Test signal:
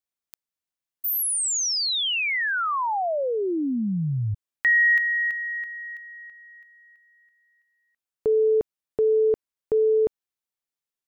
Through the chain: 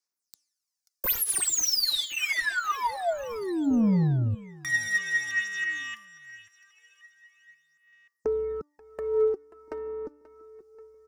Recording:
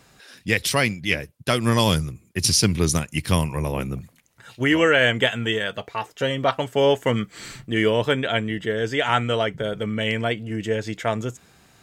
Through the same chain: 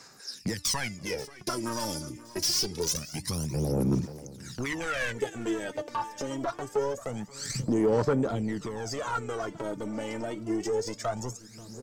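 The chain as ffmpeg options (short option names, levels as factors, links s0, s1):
-filter_complex "[0:a]acompressor=threshold=0.0178:ratio=2:attack=1.2:release=286:detection=rms,highshelf=f=4100:t=q:w=3:g=9,afwtdn=0.02,agate=range=0.501:threshold=0.00398:ratio=16:release=32:detection=rms,asplit=2[s0][s1];[s1]highpass=f=720:p=1,volume=17.8,asoftclip=type=tanh:threshold=0.668[s2];[s0][s2]amix=inputs=2:normalize=0,lowpass=f=4200:p=1,volume=0.501,equalizer=f=650:t=o:w=0.78:g=-6,acrossover=split=240|4700[s3][s4][s5];[s3]acompressor=threshold=0.0141:ratio=4[s6];[s4]acompressor=threshold=0.0224:ratio=4[s7];[s5]acompressor=threshold=0.0355:ratio=4[s8];[s6][s7][s8]amix=inputs=3:normalize=0,asoftclip=type=tanh:threshold=0.0376,bandreject=f=294.6:t=h:w=4,bandreject=f=589.2:t=h:w=4,bandreject=f=883.8:t=h:w=4,bandreject=f=1178.4:t=h:w=4,bandreject=f=1473:t=h:w=4,bandreject=f=1767.6:t=h:w=4,bandreject=f=2062.2:t=h:w=4,bandreject=f=2356.8:t=h:w=4,bandreject=f=2651.4:t=h:w=4,bandreject=f=2946:t=h:w=4,bandreject=f=3240.6:t=h:w=4,bandreject=f=3535.2:t=h:w=4,bandreject=f=3829.8:t=h:w=4,bandreject=f=4124.4:t=h:w=4,bandreject=f=4419:t=h:w=4,bandreject=f=4713.6:t=h:w=4,bandreject=f=5008.2:t=h:w=4,bandreject=f=5302.8:t=h:w=4,bandreject=f=5597.4:t=h:w=4,bandreject=f=5892:t=h:w=4,bandreject=f=6186.6:t=h:w=4,bandreject=f=6481.2:t=h:w=4,bandreject=f=6775.8:t=h:w=4,bandreject=f=7070.4:t=h:w=4,bandreject=f=7365:t=h:w=4,bandreject=f=7659.6:t=h:w=4,bandreject=f=7954.2:t=h:w=4,bandreject=f=8248.8:t=h:w=4,bandreject=f=8543.4:t=h:w=4,bandreject=f=8838:t=h:w=4,bandreject=f=9132.6:t=h:w=4,bandreject=f=9427.2:t=h:w=4,bandreject=f=9721.8:t=h:w=4,bandreject=f=10016.4:t=h:w=4,bandreject=f=10311:t=h:w=4,bandreject=f=10605.6:t=h:w=4,bandreject=f=10900.2:t=h:w=4,asplit=2[s9][s10];[s10]aecho=0:1:534|1068|1602|2136:0.126|0.0667|0.0354|0.0187[s11];[s9][s11]amix=inputs=2:normalize=0,aphaser=in_gain=1:out_gain=1:delay=3.4:decay=0.68:speed=0.25:type=sinusoidal,volume=1.19"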